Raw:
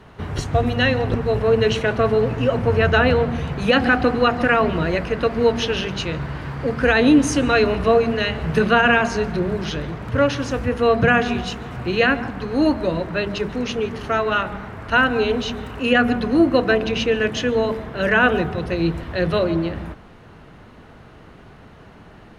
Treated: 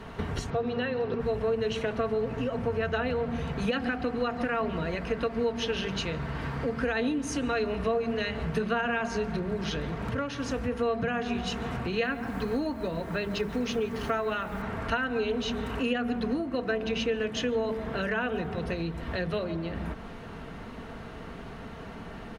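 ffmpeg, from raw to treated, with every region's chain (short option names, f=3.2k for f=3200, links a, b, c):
-filter_complex "[0:a]asettb=1/sr,asplit=3[a][b][c];[a]atrim=end=0.504[d];[b]atrim=start=0.5:end=1.2,asetpts=PTS-STARTPTS,afade=t=in:d=0.004:c=qsin,afade=t=out:st=0.696:d=0.004:c=qsin,highpass=140,equalizer=f=290:t=q:w=4:g=-8,equalizer=f=410:t=q:w=4:g=7,equalizer=f=680:t=q:w=4:g=-4,equalizer=f=2k:t=q:w=4:g=-5,equalizer=f=3.2k:t=q:w=4:g=-4,lowpass=f=4.9k:w=0.5412,lowpass=f=4.9k:w=1.3066,acrossover=split=2600[e][f];[f]acompressor=threshold=-36dB:ratio=4:attack=1:release=60[g];[e][g]amix=inputs=2:normalize=0[h];[c]atrim=start=1.196[i];[d][h]acrossfade=d=0.004:c1=hsin:c2=qsin[j];[j][i]acrossfade=d=0.004:c1=qsin:c2=hsin,asettb=1/sr,asplit=3[k][l][m];[k]atrim=end=12.034[n];[l]atrim=start=12.03:end=14.62,asetpts=PTS-STARTPTS,afade=t=in:d=0.004:c=qsin,afade=t=out:st=2.586:d=0.004:c=qsin,acrusher=bits=7:mix=0:aa=0.5,bandreject=f=2.8k:w=29[o];[m]atrim=start=14.616[p];[n][o]acrossfade=d=0.004:c1=hsin:c2=qsin[q];[q][p]acrossfade=d=0.004:c1=qsin:c2=hsin,acompressor=threshold=-32dB:ratio=5,aecho=1:1:4.4:0.36,volume=2.5dB"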